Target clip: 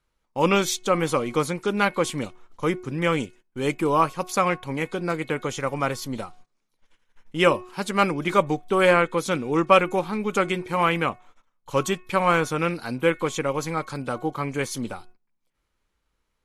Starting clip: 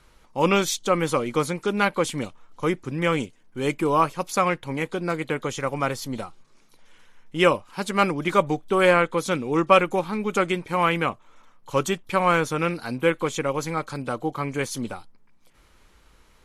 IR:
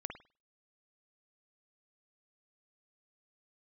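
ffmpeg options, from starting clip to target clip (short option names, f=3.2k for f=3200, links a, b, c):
-af "bandreject=f=365:t=h:w=4,bandreject=f=730:t=h:w=4,bandreject=f=1.095k:t=h:w=4,bandreject=f=1.46k:t=h:w=4,bandreject=f=1.825k:t=h:w=4,bandreject=f=2.19k:t=h:w=4,bandreject=f=2.555k:t=h:w=4,agate=range=-19dB:threshold=-46dB:ratio=16:detection=peak"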